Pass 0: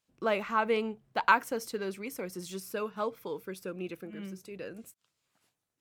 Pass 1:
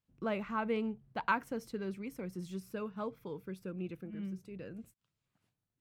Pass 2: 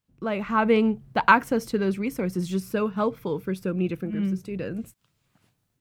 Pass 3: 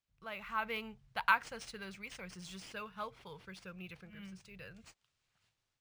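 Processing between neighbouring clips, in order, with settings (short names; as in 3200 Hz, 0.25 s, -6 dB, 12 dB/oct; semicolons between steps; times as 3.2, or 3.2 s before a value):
tone controls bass +14 dB, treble -6 dB; gain -8 dB
AGC gain up to 9 dB; gain +5.5 dB
passive tone stack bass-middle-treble 10-0-10; decimation joined by straight lines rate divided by 3×; gain -4 dB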